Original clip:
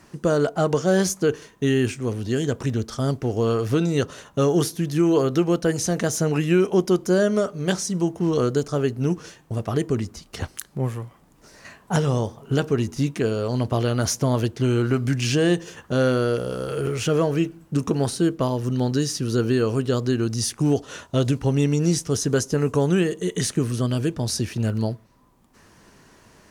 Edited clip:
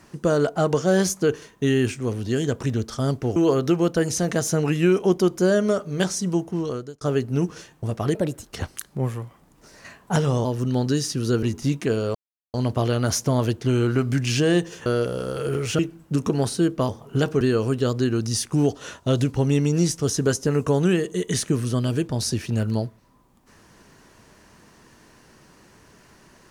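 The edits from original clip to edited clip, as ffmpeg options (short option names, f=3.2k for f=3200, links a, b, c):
-filter_complex "[0:a]asplit=12[a][b][c][d][e][f][g][h][i][j][k][l];[a]atrim=end=3.362[m];[b]atrim=start=5.038:end=8.69,asetpts=PTS-STARTPTS,afade=t=out:st=2.972:d=0.68[n];[c]atrim=start=8.69:end=9.834,asetpts=PTS-STARTPTS,afade=t=in:d=0.004:c=hsin[o];[d]atrim=start=9.83:end=10.29,asetpts=PTS-STARTPTS,asetrate=59976,aresample=44100,atrim=end_sample=14916,asetpts=PTS-STARTPTS[p];[e]atrim=start=10.286:end=12.252[q];[f]atrim=start=18.498:end=19.482[r];[g]atrim=start=12.768:end=13.49,asetpts=PTS-STARTPTS,afade=t=out:st=0.718:d=0.004:c=hsin,apad=pad_dur=0.39[s];[h]atrim=start=13.49:end=15.812,asetpts=PTS-STARTPTS,afade=t=in:d=0.004:c=hsin[t];[i]atrim=start=16.178:end=17.112[u];[j]atrim=start=17.398:end=18.502[v];[k]atrim=start=12.248:end=12.772[w];[l]atrim=start=19.478[x];[n][o]concat=n=2:v=0:a=1[y];[m][y]acrossfade=d=0.004:c1=hsin:c2=hsin[z];[z][p]acrossfade=d=0.004:c1=hsin:c2=hsin[aa];[aa][q]acrossfade=d=0.004:c1=hsin:c2=hsin[ab];[ab][r]acrossfade=d=0.004:c1=hsin:c2=hsin[ac];[s][t]concat=n=2:v=0:a=1[ad];[ac][ad]acrossfade=d=0.004:c1=hsin:c2=hsin[ae];[ae][u]acrossfade=d=0.004:c1=hsin:c2=hsin[af];[af][v]acrossfade=d=0.004:c1=hsin:c2=hsin[ag];[ag][w]acrossfade=d=0.004:c1=hsin:c2=hsin[ah];[ah][x]acrossfade=d=0.004:c1=hsin:c2=hsin"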